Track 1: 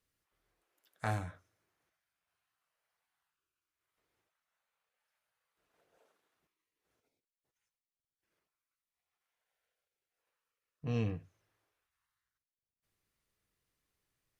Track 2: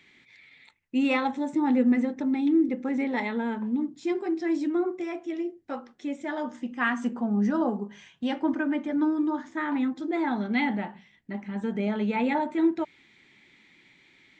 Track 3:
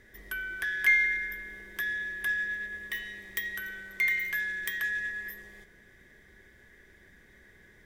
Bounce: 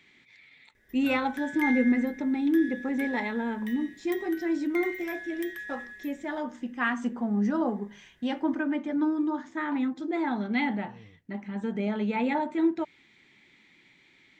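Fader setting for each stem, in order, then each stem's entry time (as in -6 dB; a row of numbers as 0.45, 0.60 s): -18.0, -1.5, -8.5 dB; 0.00, 0.00, 0.75 s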